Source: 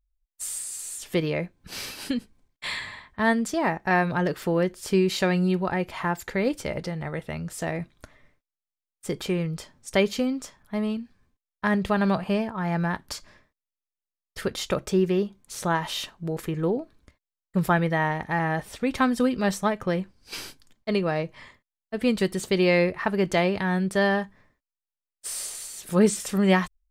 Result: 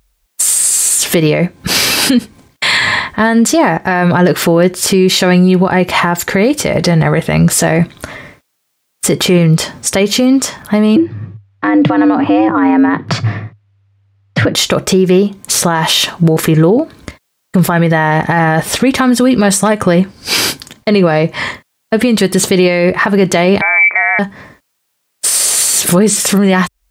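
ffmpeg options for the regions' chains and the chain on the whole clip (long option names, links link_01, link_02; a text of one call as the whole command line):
ffmpeg -i in.wav -filter_complex "[0:a]asettb=1/sr,asplit=3[link_01][link_02][link_03];[link_01]atrim=end=10.964[link_04];[link_02]atrim=start=10.96:end=14.55,asetpts=PTS-STARTPTS,afade=type=in:duration=0.004:curve=qsin,afade=type=out:start_time=3.586:duration=0.004:curve=qsin,lowpass=2500,lowshelf=frequency=120:gain=10.5,afreqshift=99[link_05];[link_03]atrim=start=14.546[link_06];[link_04][link_05]acrossfade=duration=0.004:curve1=hsin:curve2=qsin[link_07];[link_07][link_06]acrossfade=duration=0.004:curve1=qsin:curve2=hsin,asettb=1/sr,asplit=3[link_08][link_09][link_10];[link_08]atrim=end=19.504[link_11];[link_09]atrim=start=19.5:end=19.9,asetpts=PTS-STARTPTS,afade=type=in:duration=0.004:curve=qsin,afade=type=out:start_time=0.396:duration=0.004:curve=qsin,equalizer=frequency=8800:width=2.2:gain=10,asoftclip=type=hard:threshold=-14.5dB[link_12];[link_10]atrim=start=19.896[link_13];[link_11][link_12]acrossfade=duration=0.004:curve1=hsin:curve2=qsin[link_14];[link_14][link_13]acrossfade=duration=0.004:curve1=qsin:curve2=hsin,asettb=1/sr,asplit=3[link_15][link_16][link_17];[link_15]atrim=end=23.614[link_18];[link_16]atrim=start=23.61:end=24.19,asetpts=PTS-STARTPTS,afade=type=in:duration=0.004:curve=qsin,afade=type=out:start_time=0.576:duration=0.004:curve=qsin,lowpass=frequency=2100:width_type=q:width=0.5098,lowpass=frequency=2100:width_type=q:width=0.6013,lowpass=frequency=2100:width_type=q:width=0.9,lowpass=frequency=2100:width_type=q:width=2.563,afreqshift=-2500,highpass=250[link_19];[link_17]atrim=start=24.186[link_20];[link_18][link_19]acrossfade=duration=0.004:curve1=hsin:curve2=qsin[link_21];[link_21][link_20]acrossfade=duration=0.004:curve1=qsin:curve2=hsin,highpass=92,acompressor=threshold=-37dB:ratio=2.5,alimiter=level_in=31dB:limit=-1dB:release=50:level=0:latency=1,volume=-1dB" out.wav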